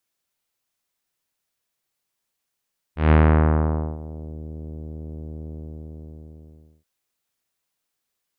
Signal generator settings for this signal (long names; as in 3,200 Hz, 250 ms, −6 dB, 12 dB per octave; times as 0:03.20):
subtractive voice saw D#2 24 dB per octave, low-pass 520 Hz, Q 0.79, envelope 2.5 octaves, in 1.43 s, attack 153 ms, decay 0.86 s, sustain −21 dB, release 1.37 s, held 2.51 s